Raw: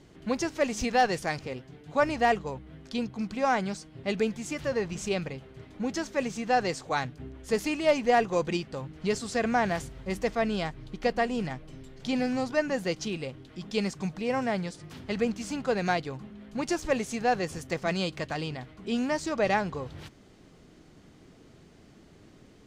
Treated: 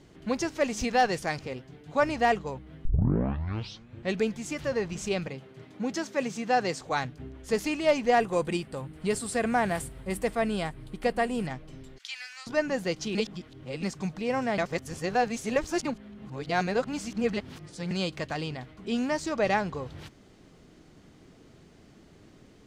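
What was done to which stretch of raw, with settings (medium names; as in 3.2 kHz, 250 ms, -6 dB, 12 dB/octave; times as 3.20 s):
2.85 s: tape start 1.32 s
5.27–6.81 s: high-pass 110 Hz 24 dB/octave
8.20–11.47 s: resonant high shelf 7.5 kHz +6.5 dB, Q 3
11.98–12.47 s: high-pass 1.5 kHz 24 dB/octave
13.15–13.83 s: reverse
14.58–17.91 s: reverse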